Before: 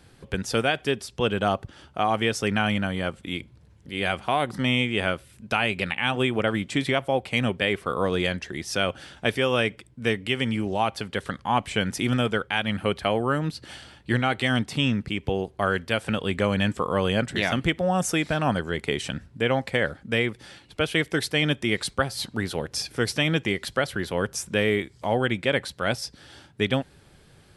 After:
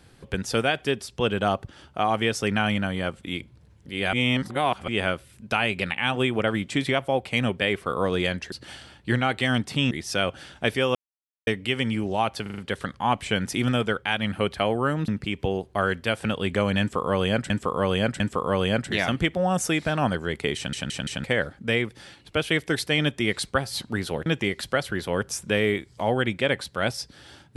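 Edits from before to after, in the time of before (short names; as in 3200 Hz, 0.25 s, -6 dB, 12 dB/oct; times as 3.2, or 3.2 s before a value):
4.13–4.88 reverse
9.56–10.08 mute
11.03 stutter 0.04 s, 5 plays
13.53–14.92 move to 8.52
16.64–17.34 loop, 3 plays
19 stutter in place 0.17 s, 4 plays
22.7–23.3 cut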